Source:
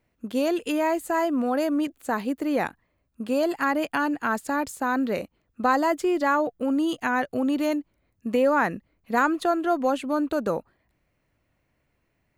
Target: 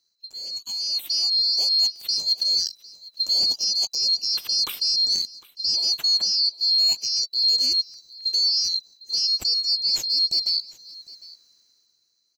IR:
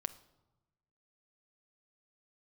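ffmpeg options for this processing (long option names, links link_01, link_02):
-af "afftfilt=real='real(if(lt(b,736),b+184*(1-2*mod(floor(b/184),2)),b),0)':imag='imag(if(lt(b,736),b+184*(1-2*mod(floor(b/184),2)),b),0)':win_size=2048:overlap=0.75,areverse,acompressor=threshold=-33dB:ratio=12,areverse,alimiter=level_in=5dB:limit=-24dB:level=0:latency=1:release=252,volume=-5dB,dynaudnorm=framelen=110:gausssize=17:maxgain=16dB,aecho=1:1:754:0.0891"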